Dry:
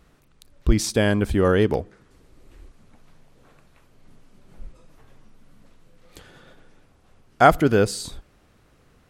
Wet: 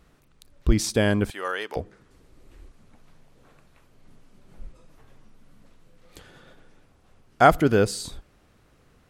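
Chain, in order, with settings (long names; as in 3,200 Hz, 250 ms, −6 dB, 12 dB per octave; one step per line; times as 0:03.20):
0:01.30–0:01.76: high-pass filter 980 Hz 12 dB per octave
level −1.5 dB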